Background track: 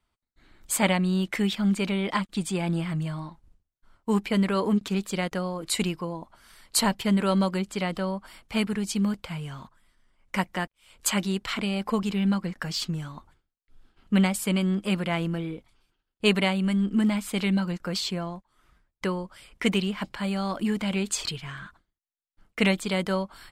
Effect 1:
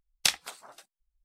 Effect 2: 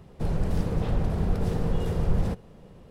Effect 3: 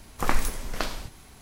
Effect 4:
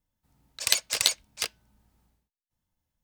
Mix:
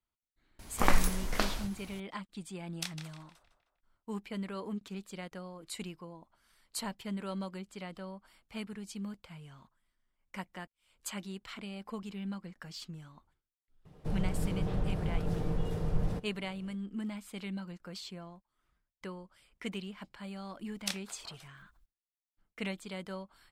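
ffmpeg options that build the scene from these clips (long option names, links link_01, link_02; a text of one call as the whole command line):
ffmpeg -i bed.wav -i cue0.wav -i cue1.wav -i cue2.wav -filter_complex "[1:a]asplit=2[link_01][link_02];[0:a]volume=-15dB[link_03];[link_01]asplit=2[link_04][link_05];[link_05]adelay=155,lowpass=frequency=3600:poles=1,volume=-7dB,asplit=2[link_06][link_07];[link_07]adelay=155,lowpass=frequency=3600:poles=1,volume=0.5,asplit=2[link_08][link_09];[link_09]adelay=155,lowpass=frequency=3600:poles=1,volume=0.5,asplit=2[link_10][link_11];[link_11]adelay=155,lowpass=frequency=3600:poles=1,volume=0.5,asplit=2[link_12][link_13];[link_13]adelay=155,lowpass=frequency=3600:poles=1,volume=0.5,asplit=2[link_14][link_15];[link_15]adelay=155,lowpass=frequency=3600:poles=1,volume=0.5[link_16];[link_04][link_06][link_08][link_10][link_12][link_14][link_16]amix=inputs=7:normalize=0[link_17];[2:a]aecho=1:1:6.6:0.36[link_18];[link_02]acompressor=mode=upward:threshold=-36dB:ratio=2.5:attack=3.2:release=140:knee=2.83:detection=peak[link_19];[3:a]atrim=end=1.41,asetpts=PTS-STARTPTS,volume=-1.5dB,afade=type=in:duration=0.004:curve=hsin,afade=type=out:start_time=1.406:duration=0.004:curve=hsin,adelay=590[link_20];[link_17]atrim=end=1.24,asetpts=PTS-STARTPTS,volume=-14.5dB,afade=type=in:duration=0.004:curve=hsin,afade=type=out:start_time=1.236:duration=0.004:curve=hsin,adelay=2570[link_21];[link_18]atrim=end=2.9,asetpts=PTS-STARTPTS,volume=-7.5dB,afade=type=in:duration=0.004:curve=hsin,afade=type=out:start_time=2.896:duration=0.004:curve=hsin,adelay=13850[link_22];[link_19]atrim=end=1.24,asetpts=PTS-STARTPTS,volume=-11.5dB,afade=type=in:duration=0.004:curve=hsin,afade=type=out:start_time=1.236:duration=0.004:curve=hsin,adelay=20620[link_23];[link_03][link_20][link_21][link_22][link_23]amix=inputs=5:normalize=0" out.wav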